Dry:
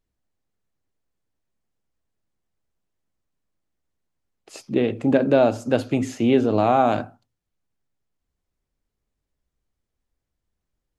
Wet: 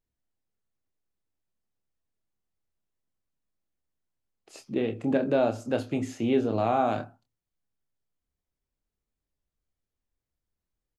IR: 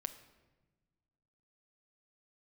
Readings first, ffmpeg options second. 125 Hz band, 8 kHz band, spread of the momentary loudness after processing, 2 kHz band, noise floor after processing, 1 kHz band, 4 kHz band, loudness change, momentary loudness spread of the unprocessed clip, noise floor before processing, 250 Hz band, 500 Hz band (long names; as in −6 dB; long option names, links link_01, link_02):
−7.0 dB, −7.0 dB, 8 LU, −7.0 dB, below −85 dBFS, −7.0 dB, −7.0 dB, −7.0 dB, 8 LU, −82 dBFS, −7.0 dB, −7.0 dB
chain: -filter_complex "[0:a]asplit=2[link_01][link_02];[link_02]adelay=27,volume=-8.5dB[link_03];[link_01][link_03]amix=inputs=2:normalize=0,volume=-7.5dB"